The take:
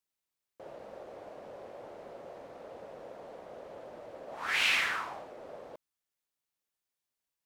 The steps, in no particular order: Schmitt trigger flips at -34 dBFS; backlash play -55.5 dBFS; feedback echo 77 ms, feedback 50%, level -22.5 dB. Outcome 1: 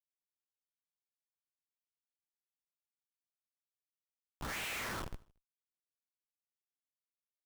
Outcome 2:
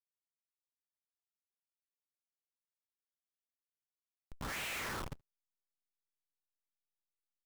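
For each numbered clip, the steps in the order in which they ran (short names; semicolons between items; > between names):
backlash > Schmitt trigger > feedback echo; Schmitt trigger > feedback echo > backlash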